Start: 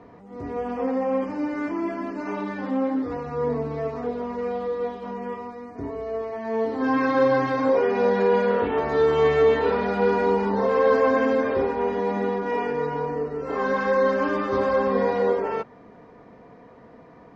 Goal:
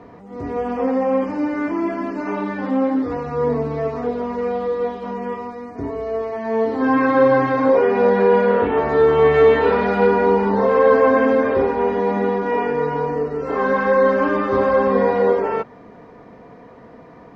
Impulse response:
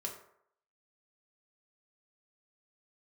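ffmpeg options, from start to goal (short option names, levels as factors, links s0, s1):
-filter_complex "[0:a]asettb=1/sr,asplit=3[s0][s1][s2];[s0]atrim=end=9.344[s3];[s1]atrim=start=9.34:end=10.07,asetpts=PTS-STARTPTS,afade=t=in:d=0.004:c=qsin,afade=t=out:st=0.726:d=0.004:c=qsin,highshelf=f=3300:g=10.5[s4];[s2]atrim=start=10.066[s5];[s3][s4]acrossfade=d=0.004:c1=hsin:c2=qsin[s6];[s6][s5]acrossfade=d=0.004:c1=qsin:c2=hsin,acrossover=split=2900[s7][s8];[s8]acompressor=threshold=0.00158:ratio=4:attack=1:release=60[s9];[s7][s9]amix=inputs=2:normalize=0,volume=1.88"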